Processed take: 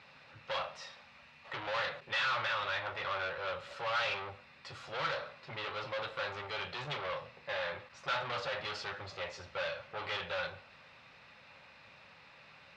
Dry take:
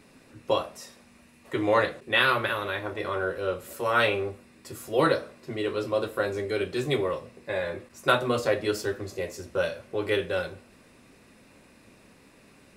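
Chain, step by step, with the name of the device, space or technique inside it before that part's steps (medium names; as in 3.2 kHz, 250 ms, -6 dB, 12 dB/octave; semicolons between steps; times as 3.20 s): scooped metal amplifier (valve stage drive 34 dB, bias 0.35; cabinet simulation 100–4100 Hz, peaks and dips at 150 Hz +6 dB, 290 Hz +7 dB, 550 Hz +7 dB, 840 Hz +8 dB, 1.3 kHz +5 dB; amplifier tone stack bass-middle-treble 10-0-10); trim +7.5 dB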